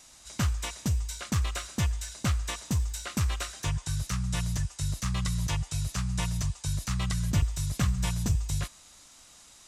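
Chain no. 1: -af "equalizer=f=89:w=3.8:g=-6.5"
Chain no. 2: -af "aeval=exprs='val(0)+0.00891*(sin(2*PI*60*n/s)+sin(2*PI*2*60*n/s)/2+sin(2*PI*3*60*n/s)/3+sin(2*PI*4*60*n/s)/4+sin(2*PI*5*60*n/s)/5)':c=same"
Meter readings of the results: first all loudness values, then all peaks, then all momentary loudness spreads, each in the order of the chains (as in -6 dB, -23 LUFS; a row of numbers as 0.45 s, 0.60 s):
-32.0 LUFS, -31.0 LUFS; -17.0 dBFS, -16.0 dBFS; 5 LU, 5 LU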